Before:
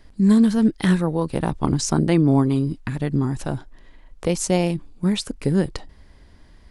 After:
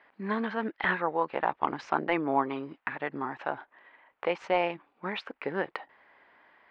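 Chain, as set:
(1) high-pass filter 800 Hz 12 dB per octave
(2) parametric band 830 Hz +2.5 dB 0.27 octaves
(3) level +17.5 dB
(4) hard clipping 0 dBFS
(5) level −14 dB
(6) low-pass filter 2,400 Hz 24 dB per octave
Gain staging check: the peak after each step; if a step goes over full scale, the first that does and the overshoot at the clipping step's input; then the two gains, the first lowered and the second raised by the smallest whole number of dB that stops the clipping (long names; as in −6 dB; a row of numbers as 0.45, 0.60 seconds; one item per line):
−8.5, −8.5, +9.0, 0.0, −14.0, −12.5 dBFS
step 3, 9.0 dB
step 3 +8.5 dB, step 5 −5 dB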